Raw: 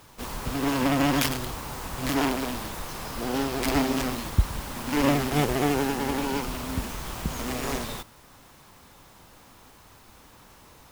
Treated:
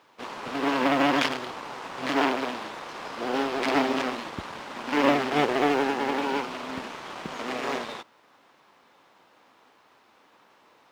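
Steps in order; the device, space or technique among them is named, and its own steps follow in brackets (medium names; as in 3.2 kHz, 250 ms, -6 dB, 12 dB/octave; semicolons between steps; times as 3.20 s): phone line with mismatched companding (band-pass 330–3500 Hz; companding laws mixed up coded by A); trim +4.5 dB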